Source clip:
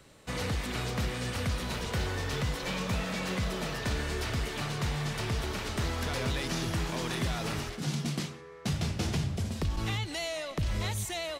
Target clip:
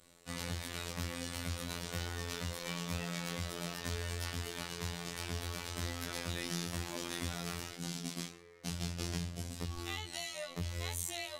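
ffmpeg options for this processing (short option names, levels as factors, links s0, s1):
-af "flanger=delay=15:depth=3.4:speed=0.71,afftfilt=real='hypot(re,im)*cos(PI*b)':imag='0':win_size=2048:overlap=0.75,aemphasis=mode=production:type=cd,volume=0.841"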